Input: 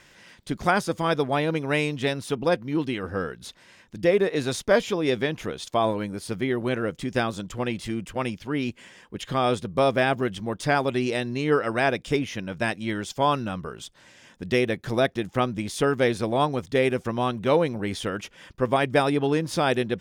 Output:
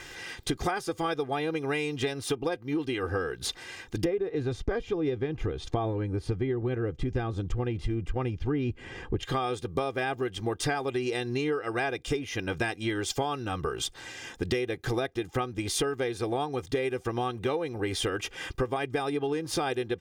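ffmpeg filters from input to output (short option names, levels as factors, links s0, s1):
-filter_complex "[0:a]asettb=1/sr,asplit=3[s0][s1][s2];[s0]atrim=end=4.054[s3];[s1]atrim=start=4.05:end=9.23,asetpts=PTS-STARTPTS,afade=t=in:d=0.004:c=qsin,afade=t=out:st=5.176:d=0.004:c=qsin,aemphasis=mode=reproduction:type=riaa[s4];[s2]atrim=start=9.226[s5];[s3][s4]acrossfade=d=0.004:c1=hsin:c2=qsin[s6];[s6][s5]acrossfade=d=0.004:c1=qsin:c2=hsin,aecho=1:1:2.5:0.69,acompressor=threshold=0.02:ratio=16,volume=2.51"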